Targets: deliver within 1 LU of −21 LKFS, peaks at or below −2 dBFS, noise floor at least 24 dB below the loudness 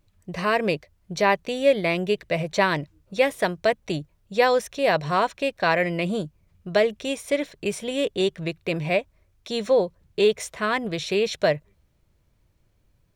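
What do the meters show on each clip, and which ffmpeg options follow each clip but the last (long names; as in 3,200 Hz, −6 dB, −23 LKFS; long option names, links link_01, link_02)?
integrated loudness −24.0 LKFS; sample peak −5.5 dBFS; target loudness −21.0 LKFS
→ -af "volume=3dB"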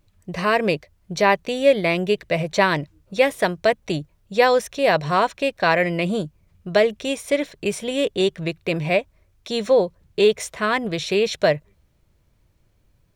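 integrated loudness −21.0 LKFS; sample peak −2.5 dBFS; background noise floor −63 dBFS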